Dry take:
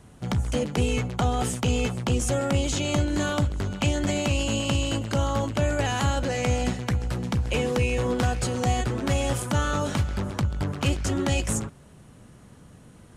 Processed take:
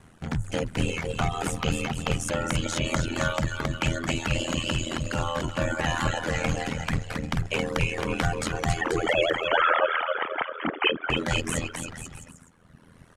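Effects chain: 8.81–11.1 sine-wave speech; bell 1700 Hz +7 dB 1.5 oct; bouncing-ball echo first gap 0.27 s, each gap 0.8×, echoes 5; reverb removal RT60 1.4 s; ring modulator 41 Hz

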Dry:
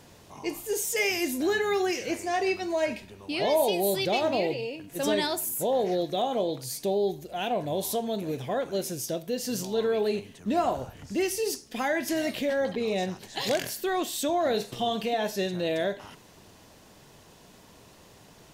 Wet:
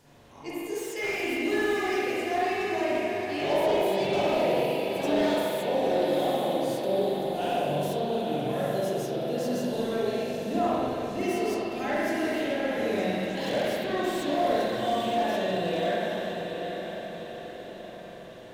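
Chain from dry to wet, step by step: diffused feedback echo 0.851 s, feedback 50%, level -7 dB; spring tank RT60 2.3 s, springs 41/48 ms, chirp 25 ms, DRR -8.5 dB; slew limiter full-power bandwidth 190 Hz; gain -8.5 dB

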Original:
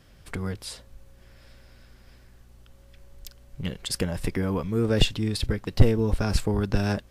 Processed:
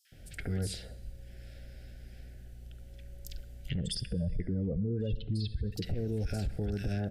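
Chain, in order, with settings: 3.69–5.72 spectral contrast raised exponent 1.9; compressor 5:1, threshold -26 dBFS, peak gain reduction 15.5 dB; bell 63 Hz +6.5 dB 2.8 oct; three bands offset in time highs, mids, lows 50/120 ms, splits 1500/5200 Hz; plate-style reverb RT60 1.2 s, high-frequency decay 0.95×, DRR 17 dB; limiter -24 dBFS, peak gain reduction 11.5 dB; Chebyshev band-stop 730–1500 Hz, order 2

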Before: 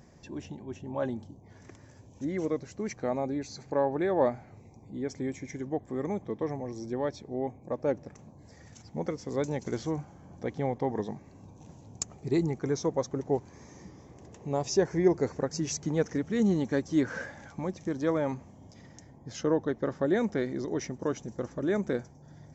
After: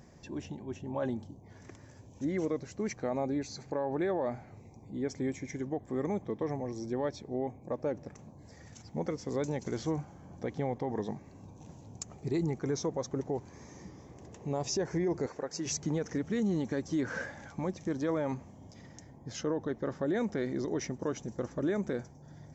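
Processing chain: 15.26–15.66 tone controls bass -14 dB, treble -3 dB; limiter -23.5 dBFS, peak gain reduction 11 dB

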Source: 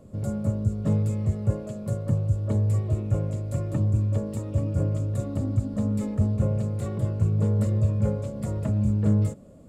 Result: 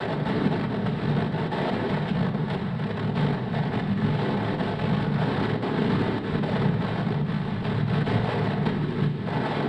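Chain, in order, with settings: delta modulation 64 kbps, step -22 dBFS; Chebyshev low-pass 2700 Hz, order 4; negative-ratio compressor -25 dBFS, ratio -0.5; noise vocoder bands 6; shoebox room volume 750 m³, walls furnished, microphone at 1.5 m

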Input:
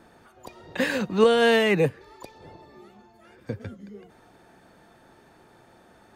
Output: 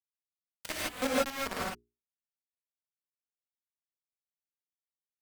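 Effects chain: Wiener smoothing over 9 samples; pre-emphasis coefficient 0.9; treble ducked by the level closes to 520 Hz, closed at -33 dBFS; grains 0.201 s, grains 7.8/s, spray 12 ms, pitch spread up and down by 0 st; comb 5.3 ms, depth 33%; in parallel at +3 dB: vocal rider 0.5 s; on the sum: bit-crush 5-bit; notches 50/100/150/200/250/300/350 Hz; varispeed +18%; non-linear reverb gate 0.18 s rising, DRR -6 dB

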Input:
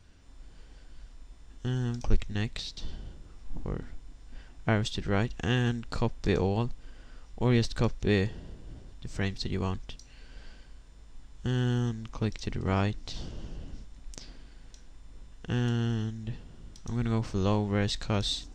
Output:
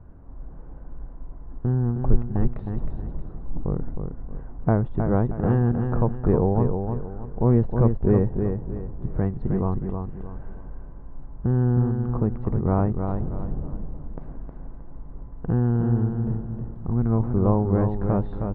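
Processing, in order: LPF 1100 Hz 24 dB/oct; bell 150 Hz +4.5 dB 0.35 oct; in parallel at +2 dB: compressor, threshold -37 dBFS, peak gain reduction 20.5 dB; on the sum: feedback echo 0.314 s, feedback 34%, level -6 dB; gain +4 dB

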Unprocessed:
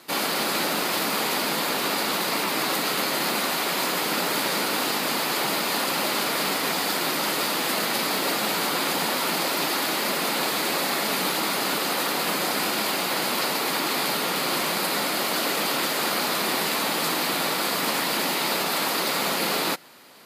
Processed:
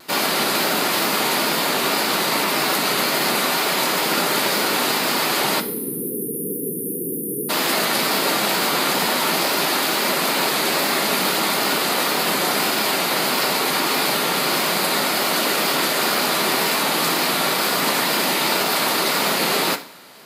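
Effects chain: spectral delete 5.6–7.49, 510–9300 Hz; two-slope reverb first 0.44 s, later 1.6 s, from -19 dB, DRR 8 dB; wow and flutter 34 cents; gain +4.5 dB

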